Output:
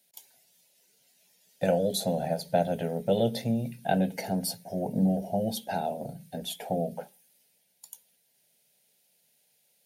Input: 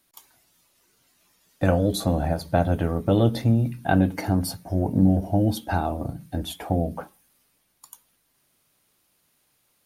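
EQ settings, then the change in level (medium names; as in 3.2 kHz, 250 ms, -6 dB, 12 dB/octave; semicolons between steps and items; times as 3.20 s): high-pass 240 Hz 6 dB/octave; static phaser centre 310 Hz, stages 6; 0.0 dB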